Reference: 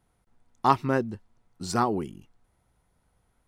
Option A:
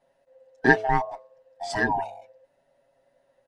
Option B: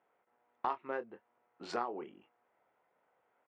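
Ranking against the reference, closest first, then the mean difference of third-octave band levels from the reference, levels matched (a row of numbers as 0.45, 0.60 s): B, A; 8.0, 10.5 dB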